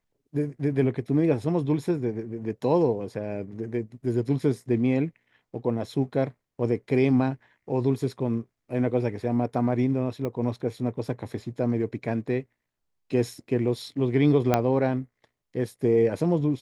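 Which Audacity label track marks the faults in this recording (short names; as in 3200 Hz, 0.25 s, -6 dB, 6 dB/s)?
10.250000	10.250000	pop -19 dBFS
14.540000	14.540000	pop -7 dBFS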